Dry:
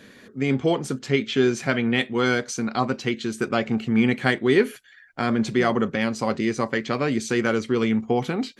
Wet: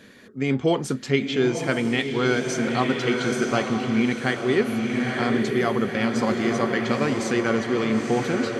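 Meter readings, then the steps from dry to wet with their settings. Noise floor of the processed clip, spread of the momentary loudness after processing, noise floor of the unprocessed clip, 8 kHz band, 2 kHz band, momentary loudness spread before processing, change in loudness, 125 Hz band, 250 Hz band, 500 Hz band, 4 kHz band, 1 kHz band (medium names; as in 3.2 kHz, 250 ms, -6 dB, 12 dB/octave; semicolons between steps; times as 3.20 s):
-38 dBFS, 2 LU, -50 dBFS, +0.5 dB, 0.0 dB, 6 LU, 0.0 dB, 0.0 dB, 0.0 dB, +0.5 dB, +0.5 dB, 0.0 dB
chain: echo that smears into a reverb 933 ms, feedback 53%, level -4 dB; gain riding 0.5 s; trim -1.5 dB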